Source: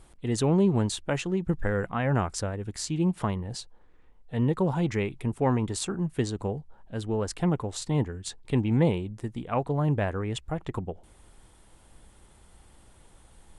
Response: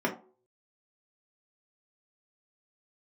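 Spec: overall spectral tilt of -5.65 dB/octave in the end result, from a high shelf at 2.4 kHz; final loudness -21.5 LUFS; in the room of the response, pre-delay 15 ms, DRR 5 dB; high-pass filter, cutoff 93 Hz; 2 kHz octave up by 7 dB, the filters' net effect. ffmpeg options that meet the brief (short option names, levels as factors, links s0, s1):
-filter_complex "[0:a]highpass=93,equalizer=f=2000:t=o:g=7,highshelf=f=2400:g=4,asplit=2[s0][s1];[1:a]atrim=start_sample=2205,adelay=15[s2];[s1][s2]afir=irnorm=-1:irlink=0,volume=0.178[s3];[s0][s3]amix=inputs=2:normalize=0,volume=1.58"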